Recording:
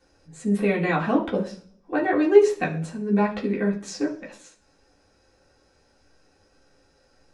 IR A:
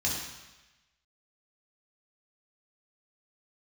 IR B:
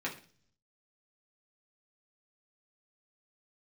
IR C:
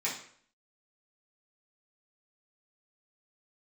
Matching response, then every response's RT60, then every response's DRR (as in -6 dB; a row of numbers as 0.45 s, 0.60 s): B; 1.1 s, 0.45 s, 0.55 s; -4.5 dB, -4.5 dB, -8.5 dB